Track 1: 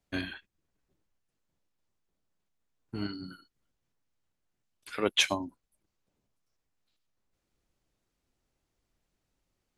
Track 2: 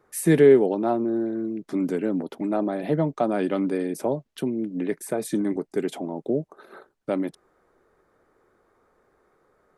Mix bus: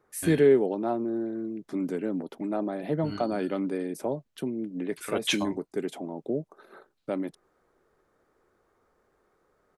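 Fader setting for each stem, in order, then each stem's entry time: -2.5 dB, -5.0 dB; 0.10 s, 0.00 s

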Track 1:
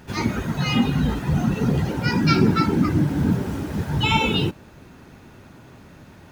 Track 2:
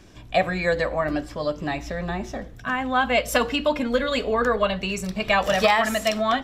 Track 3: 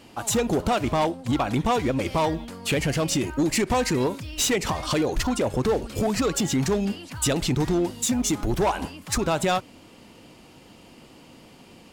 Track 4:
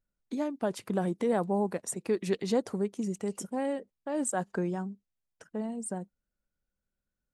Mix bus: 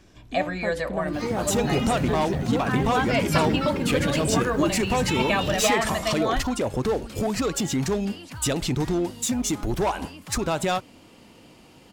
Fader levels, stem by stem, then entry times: -8.0 dB, -4.5 dB, -1.5 dB, -1.5 dB; 1.05 s, 0.00 s, 1.20 s, 0.00 s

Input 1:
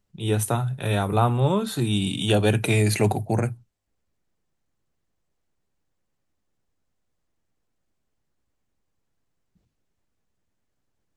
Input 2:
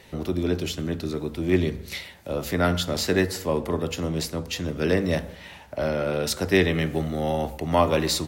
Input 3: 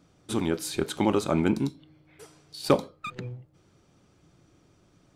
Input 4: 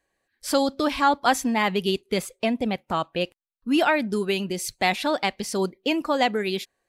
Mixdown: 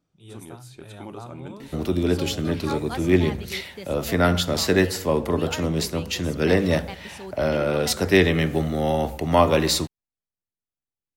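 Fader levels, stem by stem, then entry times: -19.5 dB, +3.0 dB, -15.5 dB, -14.0 dB; 0.00 s, 1.60 s, 0.00 s, 1.65 s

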